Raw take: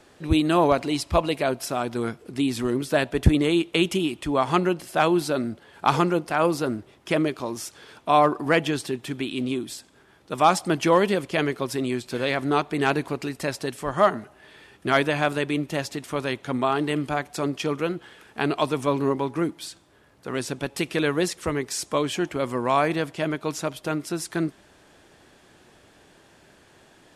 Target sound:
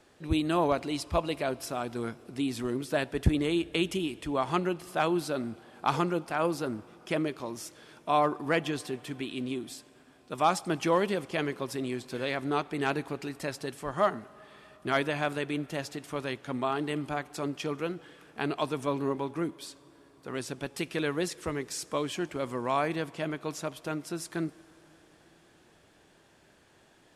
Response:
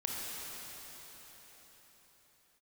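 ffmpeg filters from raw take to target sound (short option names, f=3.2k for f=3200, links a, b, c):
-filter_complex "[0:a]asplit=2[a][b];[1:a]atrim=start_sample=2205,adelay=18[c];[b][c]afir=irnorm=-1:irlink=0,volume=-24.5dB[d];[a][d]amix=inputs=2:normalize=0,volume=-7dB"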